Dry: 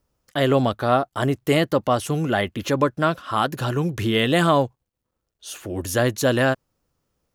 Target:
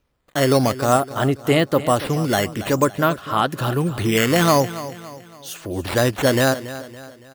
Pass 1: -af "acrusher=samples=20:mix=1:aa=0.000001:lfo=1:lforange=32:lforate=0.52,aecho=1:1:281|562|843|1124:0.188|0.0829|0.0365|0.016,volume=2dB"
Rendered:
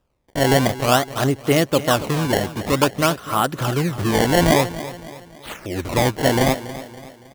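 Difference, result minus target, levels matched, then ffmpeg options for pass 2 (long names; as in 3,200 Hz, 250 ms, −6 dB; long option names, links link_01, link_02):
sample-and-hold swept by an LFO: distortion +11 dB
-af "acrusher=samples=5:mix=1:aa=0.000001:lfo=1:lforange=8:lforate=0.52,aecho=1:1:281|562|843|1124:0.188|0.0829|0.0365|0.016,volume=2dB"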